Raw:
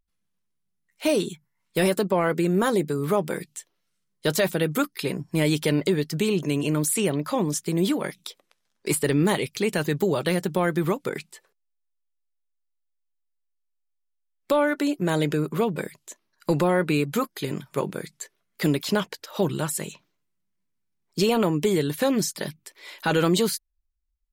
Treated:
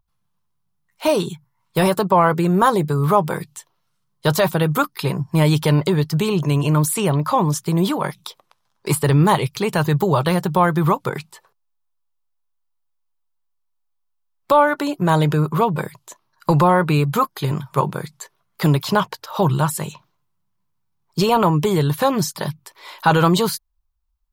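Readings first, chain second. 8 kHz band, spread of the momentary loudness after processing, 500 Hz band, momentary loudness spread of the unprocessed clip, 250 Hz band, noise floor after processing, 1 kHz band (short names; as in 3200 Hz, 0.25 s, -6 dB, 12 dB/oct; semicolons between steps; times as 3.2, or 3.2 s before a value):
+1.5 dB, 12 LU, +4.0 dB, 13 LU, +4.0 dB, -70 dBFS, +12.0 dB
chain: graphic EQ 125/250/500/1000/2000/8000 Hz +10/-7/-3/+11/-6/-5 dB; gain +5.5 dB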